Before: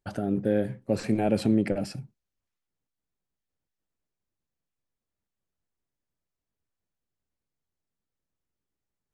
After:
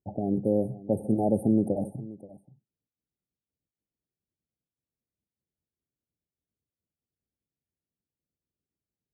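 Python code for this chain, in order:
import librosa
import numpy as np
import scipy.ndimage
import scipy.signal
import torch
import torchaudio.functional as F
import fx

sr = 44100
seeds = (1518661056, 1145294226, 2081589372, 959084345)

y = scipy.signal.sosfilt(scipy.signal.butter(2, 65.0, 'highpass', fs=sr, output='sos'), x)
y = fx.env_lowpass(y, sr, base_hz=460.0, full_db=-24.0)
y = fx.brickwall_bandstop(y, sr, low_hz=890.0, high_hz=8500.0)
y = y + 10.0 ** (-18.5 / 20.0) * np.pad(y, (int(529 * sr / 1000.0), 0))[:len(y)]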